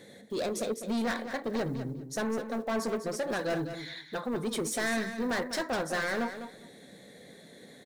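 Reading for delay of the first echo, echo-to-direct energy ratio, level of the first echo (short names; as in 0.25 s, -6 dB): 0.201 s, -10.0 dB, -10.0 dB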